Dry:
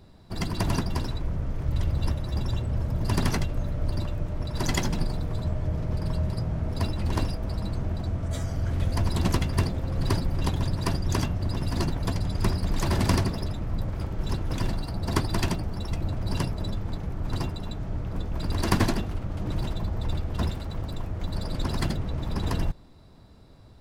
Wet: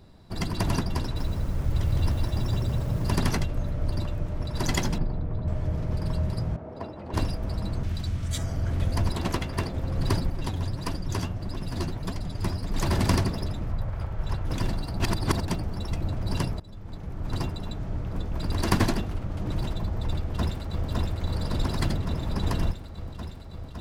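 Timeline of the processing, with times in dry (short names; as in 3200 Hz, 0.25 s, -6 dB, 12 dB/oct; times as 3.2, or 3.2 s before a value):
1–3.16 lo-fi delay 0.16 s, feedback 35%, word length 8-bit, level -3.5 dB
4.98–5.48 tape spacing loss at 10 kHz 37 dB
6.56–7.14 band-pass 600 Hz, Q 0.93
7.83–8.38 EQ curve 120 Hz 0 dB, 650 Hz -8 dB, 3400 Hz +8 dB
9.12–9.74 tone controls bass -6 dB, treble -4 dB
10.3–12.75 flange 1.6 Hz, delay 2.6 ms, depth 9.7 ms, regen +34%
13.72–14.45 EQ curve 110 Hz 0 dB, 280 Hz -10 dB, 620 Hz 0 dB, 1500 Hz +1 dB, 5800 Hz -7 dB
15–15.48 reverse
16.6–17.39 fade in, from -22.5 dB
20.17–20.89 echo throw 0.56 s, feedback 80%, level -2 dB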